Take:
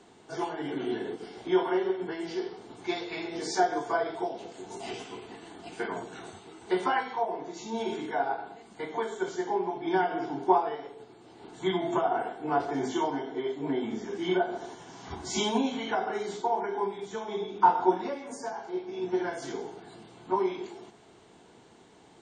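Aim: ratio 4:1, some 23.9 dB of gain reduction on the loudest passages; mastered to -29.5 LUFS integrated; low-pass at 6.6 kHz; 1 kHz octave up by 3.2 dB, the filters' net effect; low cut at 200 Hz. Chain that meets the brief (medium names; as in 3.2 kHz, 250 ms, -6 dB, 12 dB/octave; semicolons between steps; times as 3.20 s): high-pass 200 Hz; low-pass 6.6 kHz; peaking EQ 1 kHz +4 dB; compression 4:1, threshold -42 dBFS; trim +14.5 dB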